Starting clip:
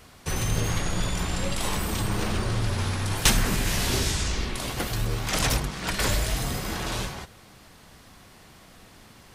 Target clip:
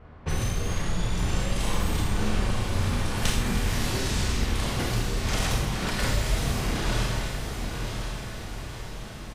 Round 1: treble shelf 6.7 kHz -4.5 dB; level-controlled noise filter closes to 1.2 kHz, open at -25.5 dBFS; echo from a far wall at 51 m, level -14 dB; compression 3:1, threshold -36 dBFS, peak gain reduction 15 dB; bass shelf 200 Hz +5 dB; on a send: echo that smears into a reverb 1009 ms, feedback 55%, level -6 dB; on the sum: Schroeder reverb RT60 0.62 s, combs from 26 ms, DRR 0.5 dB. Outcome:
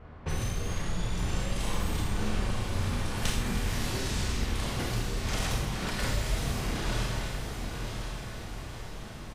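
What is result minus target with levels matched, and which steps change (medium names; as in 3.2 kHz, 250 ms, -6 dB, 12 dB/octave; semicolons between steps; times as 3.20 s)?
compression: peak gain reduction +4.5 dB
change: compression 3:1, threshold -29.5 dBFS, peak gain reduction 11 dB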